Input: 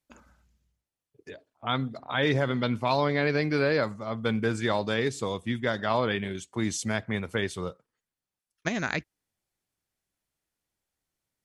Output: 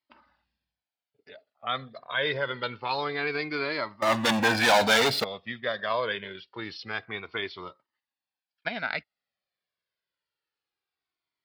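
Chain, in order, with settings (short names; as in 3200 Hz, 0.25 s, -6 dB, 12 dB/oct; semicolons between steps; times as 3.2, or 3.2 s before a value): downsampling 11025 Hz; 4.02–5.24 sample leveller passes 5; HPF 690 Hz 6 dB/oct; cascading flanger falling 0.26 Hz; gain +5 dB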